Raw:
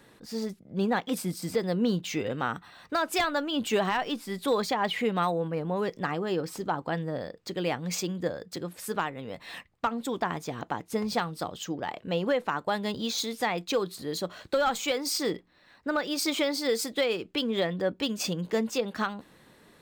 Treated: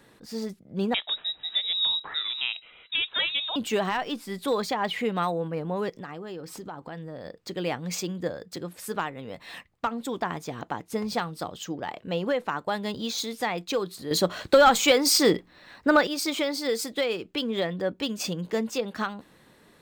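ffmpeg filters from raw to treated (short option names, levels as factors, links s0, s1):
-filter_complex "[0:a]asettb=1/sr,asplit=3[s0][s1][s2];[s0]atrim=end=0.944[s3];[s1]atrim=start=0.94:end=3.56,asetpts=PTS-STARTPTS,afade=t=in:d=0.004:c=qsin,afade=t=out:st=2.616:d=0.004:c=qsin,lowpass=f=3400:t=q:w=0.5098,lowpass=f=3400:t=q:w=0.6013,lowpass=f=3400:t=q:w=0.9,lowpass=f=3400:t=q:w=2.563,afreqshift=-4000[s4];[s2]atrim=start=3.556[s5];[s3][s4]acrossfade=d=0.004:c1=hsin:c2=qsin[s6];[s6][s5]acrossfade=d=0.004:c1=qsin:c2=hsin,asplit=3[s7][s8][s9];[s7]afade=t=out:st=5.89:d=0.02[s10];[s8]acompressor=threshold=0.0141:ratio=3:attack=3.2:release=140:knee=1:detection=peak,afade=t=in:st=5.89:d=0.02,afade=t=out:st=7.24:d=0.02[s11];[s9]afade=t=in:st=7.24:d=0.02[s12];[s10][s11][s12]amix=inputs=3:normalize=0,asplit=3[s13][s14][s15];[s13]atrim=end=14.112[s16];[s14]atrim=start=14.108:end=16.072,asetpts=PTS-STARTPTS,volume=2.82[s17];[s15]atrim=start=16.068[s18];[s16][s17]acrossfade=d=0.004:c1=hsin:c2=hsin[s19];[s19][s18]acrossfade=d=0.004:c1=hsin:c2=hsin"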